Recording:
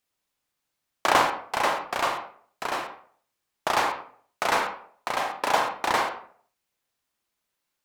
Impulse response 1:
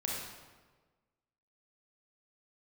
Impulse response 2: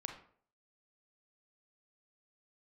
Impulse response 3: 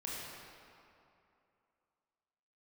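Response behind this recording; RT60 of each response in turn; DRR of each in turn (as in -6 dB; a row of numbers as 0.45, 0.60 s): 2; 1.4, 0.55, 2.7 s; -3.5, 3.5, -6.0 dB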